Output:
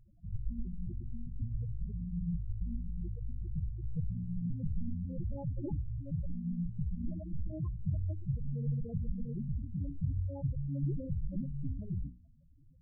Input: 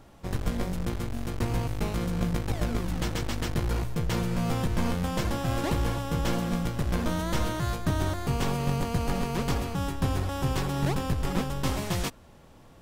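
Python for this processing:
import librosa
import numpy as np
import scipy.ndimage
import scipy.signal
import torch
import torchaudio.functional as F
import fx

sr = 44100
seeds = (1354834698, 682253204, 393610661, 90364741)

y = fx.spec_topn(x, sr, count=4)
y = fx.hum_notches(y, sr, base_hz=60, count=5)
y = F.gain(torch.from_numpy(y), -3.5).numpy()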